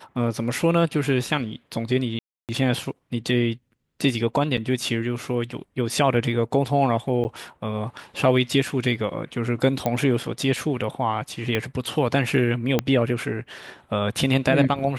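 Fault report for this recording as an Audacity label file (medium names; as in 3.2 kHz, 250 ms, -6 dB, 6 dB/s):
2.190000	2.490000	dropout 298 ms
4.570000	4.580000	dropout 5.6 ms
7.240000	7.250000	dropout 9.8 ms
9.860000	9.860000	pop -10 dBFS
11.550000	11.550000	pop -10 dBFS
12.790000	12.790000	pop -7 dBFS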